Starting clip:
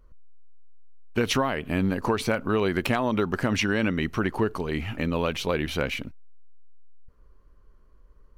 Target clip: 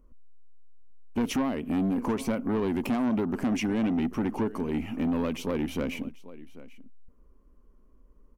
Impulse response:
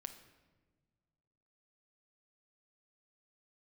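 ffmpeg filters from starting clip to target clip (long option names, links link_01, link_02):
-filter_complex "[0:a]equalizer=frequency=100:width_type=o:width=0.67:gain=-10,equalizer=frequency=250:width_type=o:width=0.67:gain=11,equalizer=frequency=1600:width_type=o:width=0.67:gain=-8,equalizer=frequency=4000:width_type=o:width=0.67:gain=-11,asplit=2[link_01][link_02];[link_02]aecho=0:1:789:0.0944[link_03];[link_01][link_03]amix=inputs=2:normalize=0,asoftclip=type=tanh:threshold=-19.5dB,volume=-2.5dB"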